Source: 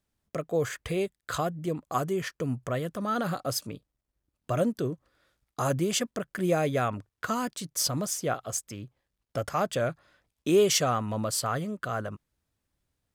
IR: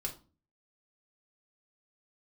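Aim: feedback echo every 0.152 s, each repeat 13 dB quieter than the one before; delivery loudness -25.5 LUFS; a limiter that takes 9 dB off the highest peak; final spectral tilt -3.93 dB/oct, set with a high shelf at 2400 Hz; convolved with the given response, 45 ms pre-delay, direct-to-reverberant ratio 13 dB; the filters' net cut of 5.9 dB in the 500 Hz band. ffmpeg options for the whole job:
-filter_complex "[0:a]equalizer=f=500:t=o:g=-8,highshelf=f=2.4k:g=3.5,alimiter=limit=-18.5dB:level=0:latency=1,aecho=1:1:152|304|456:0.224|0.0493|0.0108,asplit=2[a][b];[1:a]atrim=start_sample=2205,adelay=45[c];[b][c]afir=irnorm=-1:irlink=0,volume=-13.5dB[d];[a][d]amix=inputs=2:normalize=0,volume=6dB"

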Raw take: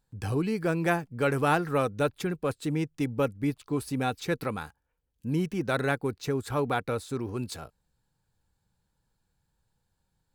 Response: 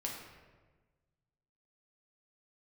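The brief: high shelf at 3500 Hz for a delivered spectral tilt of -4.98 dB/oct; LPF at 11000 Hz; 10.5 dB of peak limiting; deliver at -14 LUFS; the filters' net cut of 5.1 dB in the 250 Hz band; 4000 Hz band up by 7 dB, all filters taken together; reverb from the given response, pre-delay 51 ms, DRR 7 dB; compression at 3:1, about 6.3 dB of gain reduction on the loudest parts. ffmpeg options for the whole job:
-filter_complex "[0:a]lowpass=11k,equalizer=f=250:t=o:g=-7.5,highshelf=f=3.5k:g=4.5,equalizer=f=4k:t=o:g=5.5,acompressor=threshold=-29dB:ratio=3,alimiter=level_in=2.5dB:limit=-24dB:level=0:latency=1,volume=-2.5dB,asplit=2[a][b];[1:a]atrim=start_sample=2205,adelay=51[c];[b][c]afir=irnorm=-1:irlink=0,volume=-8dB[d];[a][d]amix=inputs=2:normalize=0,volume=22.5dB"

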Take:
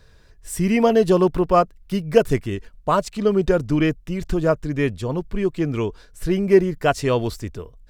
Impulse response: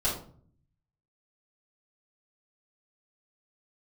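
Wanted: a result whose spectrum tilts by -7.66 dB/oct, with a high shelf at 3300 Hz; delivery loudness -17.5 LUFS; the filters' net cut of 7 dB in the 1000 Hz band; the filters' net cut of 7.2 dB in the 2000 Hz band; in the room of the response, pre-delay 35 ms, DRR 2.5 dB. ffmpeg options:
-filter_complex "[0:a]equalizer=f=1k:t=o:g=-9,equalizer=f=2k:t=o:g=-5,highshelf=f=3.3k:g=-4,asplit=2[a][b];[1:a]atrim=start_sample=2205,adelay=35[c];[b][c]afir=irnorm=-1:irlink=0,volume=-11dB[d];[a][d]amix=inputs=2:normalize=0,volume=2dB"

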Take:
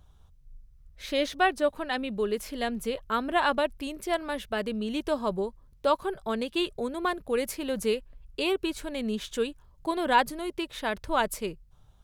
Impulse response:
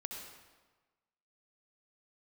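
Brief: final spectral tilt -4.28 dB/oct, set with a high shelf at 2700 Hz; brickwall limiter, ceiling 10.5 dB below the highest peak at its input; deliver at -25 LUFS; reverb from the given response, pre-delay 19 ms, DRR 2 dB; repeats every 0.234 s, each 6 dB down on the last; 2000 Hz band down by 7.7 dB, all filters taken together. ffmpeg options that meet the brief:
-filter_complex "[0:a]equalizer=f=2k:t=o:g=-8,highshelf=f=2.7k:g=-7,alimiter=limit=-24dB:level=0:latency=1,aecho=1:1:234|468|702|936|1170|1404:0.501|0.251|0.125|0.0626|0.0313|0.0157,asplit=2[a][b];[1:a]atrim=start_sample=2205,adelay=19[c];[b][c]afir=irnorm=-1:irlink=0,volume=-1dB[d];[a][d]amix=inputs=2:normalize=0,volume=6.5dB"

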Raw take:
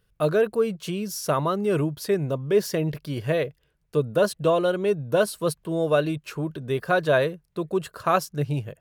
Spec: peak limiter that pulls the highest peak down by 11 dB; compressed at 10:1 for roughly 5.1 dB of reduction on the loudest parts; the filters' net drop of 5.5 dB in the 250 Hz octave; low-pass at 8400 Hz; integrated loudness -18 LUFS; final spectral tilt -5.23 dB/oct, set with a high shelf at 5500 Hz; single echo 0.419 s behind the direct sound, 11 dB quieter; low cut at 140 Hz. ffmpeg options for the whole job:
-af "highpass=140,lowpass=8.4k,equalizer=f=250:t=o:g=-8,highshelf=f=5.5k:g=-7,acompressor=threshold=-22dB:ratio=10,alimiter=limit=-23dB:level=0:latency=1,aecho=1:1:419:0.282,volume=15.5dB"

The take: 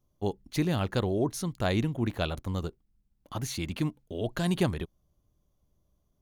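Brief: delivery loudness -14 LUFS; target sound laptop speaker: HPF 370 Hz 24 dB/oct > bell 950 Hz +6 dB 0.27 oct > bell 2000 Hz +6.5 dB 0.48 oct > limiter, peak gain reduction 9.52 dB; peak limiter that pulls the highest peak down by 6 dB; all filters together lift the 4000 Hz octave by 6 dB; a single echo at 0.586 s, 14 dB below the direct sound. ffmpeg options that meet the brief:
-af "equalizer=f=4k:t=o:g=6.5,alimiter=limit=-17.5dB:level=0:latency=1,highpass=f=370:w=0.5412,highpass=f=370:w=1.3066,equalizer=f=950:t=o:w=0.27:g=6,equalizer=f=2k:t=o:w=0.48:g=6.5,aecho=1:1:586:0.2,volume=23dB,alimiter=limit=-0.5dB:level=0:latency=1"

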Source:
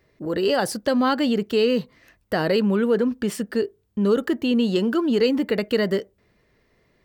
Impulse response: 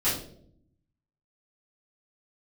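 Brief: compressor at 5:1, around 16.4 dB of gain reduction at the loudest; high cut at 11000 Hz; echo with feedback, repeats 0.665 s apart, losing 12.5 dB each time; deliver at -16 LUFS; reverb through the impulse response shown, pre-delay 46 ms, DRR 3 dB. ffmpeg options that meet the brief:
-filter_complex "[0:a]lowpass=11k,acompressor=threshold=-35dB:ratio=5,aecho=1:1:665|1330|1995:0.237|0.0569|0.0137,asplit=2[a][b];[1:a]atrim=start_sample=2205,adelay=46[c];[b][c]afir=irnorm=-1:irlink=0,volume=-14dB[d];[a][d]amix=inputs=2:normalize=0,volume=18.5dB"

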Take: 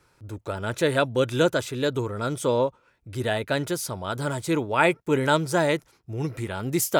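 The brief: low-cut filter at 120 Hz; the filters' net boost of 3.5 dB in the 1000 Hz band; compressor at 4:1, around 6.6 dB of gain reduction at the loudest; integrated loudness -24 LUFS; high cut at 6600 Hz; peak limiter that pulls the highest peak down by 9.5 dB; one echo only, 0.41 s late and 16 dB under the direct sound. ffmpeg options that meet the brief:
-af "highpass=120,lowpass=6.6k,equalizer=f=1k:t=o:g=4.5,acompressor=threshold=-21dB:ratio=4,alimiter=limit=-18dB:level=0:latency=1,aecho=1:1:410:0.158,volume=6.5dB"

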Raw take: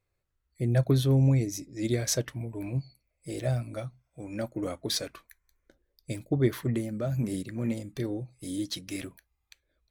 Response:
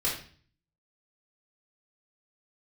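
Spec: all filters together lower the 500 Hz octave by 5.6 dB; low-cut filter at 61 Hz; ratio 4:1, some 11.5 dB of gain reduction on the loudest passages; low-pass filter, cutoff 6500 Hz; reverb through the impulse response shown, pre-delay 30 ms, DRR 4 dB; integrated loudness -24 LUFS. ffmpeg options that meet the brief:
-filter_complex "[0:a]highpass=61,lowpass=6.5k,equalizer=f=500:t=o:g=-8,acompressor=threshold=-34dB:ratio=4,asplit=2[a][b];[1:a]atrim=start_sample=2205,adelay=30[c];[b][c]afir=irnorm=-1:irlink=0,volume=-12dB[d];[a][d]amix=inputs=2:normalize=0,volume=12.5dB"

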